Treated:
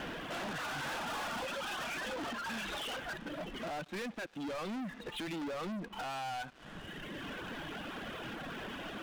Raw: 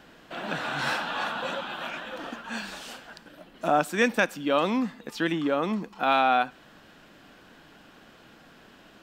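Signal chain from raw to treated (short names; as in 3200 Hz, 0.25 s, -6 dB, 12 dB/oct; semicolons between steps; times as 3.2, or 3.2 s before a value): 0.86–1.46 half-waves squared off; reverb removal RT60 1.3 s; compressor 6:1, threshold -39 dBFS, peak gain reduction 20 dB; limiter -35 dBFS, peak gain reduction 10 dB; downsampling 8000 Hz; sample leveller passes 5; gain -2.5 dB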